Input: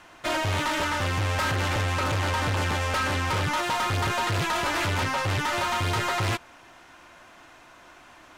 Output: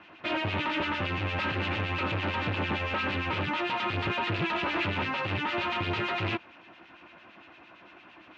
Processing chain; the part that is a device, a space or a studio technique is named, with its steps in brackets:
guitar amplifier with harmonic tremolo (two-band tremolo in antiphase 8.8 Hz, crossover 1,800 Hz; soft clipping −25.5 dBFS, distortion −19 dB; loudspeaker in its box 79–4,000 Hz, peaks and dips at 200 Hz +8 dB, 330 Hz +7 dB, 2,600 Hz +8 dB)

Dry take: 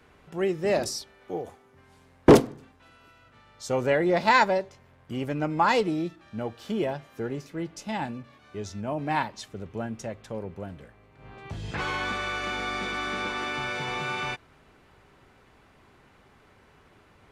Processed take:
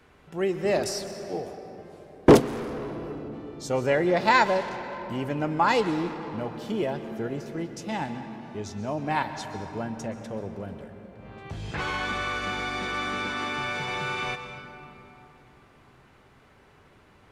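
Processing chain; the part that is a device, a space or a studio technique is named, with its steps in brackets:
saturated reverb return (on a send at −7 dB: convolution reverb RT60 3.1 s, pre-delay 116 ms + soft clipping −23.5 dBFS, distortion −8 dB)

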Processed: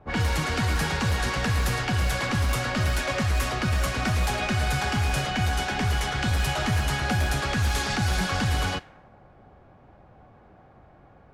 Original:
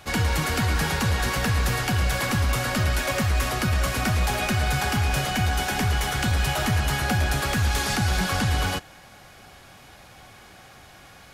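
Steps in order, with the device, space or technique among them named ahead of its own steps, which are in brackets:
cassette deck with a dynamic noise filter (white noise bed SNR 24 dB; low-pass that shuts in the quiet parts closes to 650 Hz, open at −18 dBFS)
level −1.5 dB

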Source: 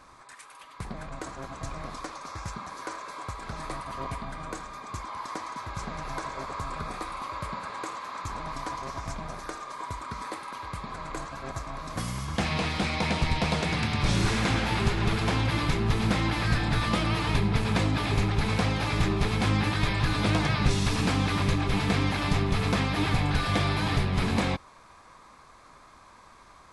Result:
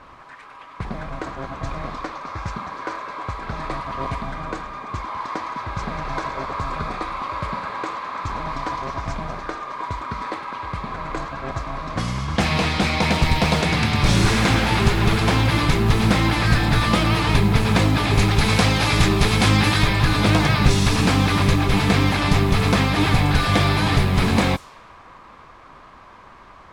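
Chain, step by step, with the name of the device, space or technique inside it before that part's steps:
0:18.19–0:19.83: high-shelf EQ 2,700 Hz +6.5 dB
cassette deck with a dynamic noise filter (white noise bed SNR 25 dB; low-pass that shuts in the quiet parts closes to 1,900 Hz, open at −22 dBFS)
level +8 dB

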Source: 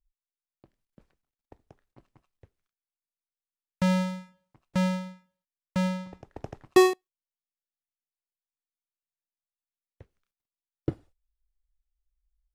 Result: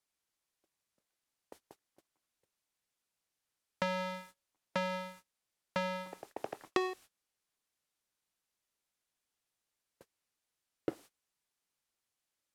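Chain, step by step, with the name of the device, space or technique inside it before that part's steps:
baby monitor (band-pass filter 420–4,400 Hz; downward compressor 10 to 1, threshold −32 dBFS, peak gain reduction 17 dB; white noise bed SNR 17 dB; noise gate −56 dBFS, range −24 dB)
low-pass filter 12,000 Hz 12 dB per octave
level +3 dB

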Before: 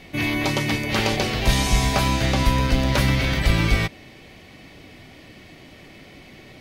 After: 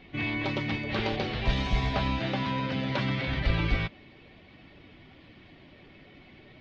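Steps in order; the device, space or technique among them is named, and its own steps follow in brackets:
0:02.19–0:03.28: high-pass filter 120 Hz 24 dB per octave
clip after many re-uploads (low-pass filter 4,000 Hz 24 dB per octave; spectral magnitudes quantised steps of 15 dB)
level −7 dB

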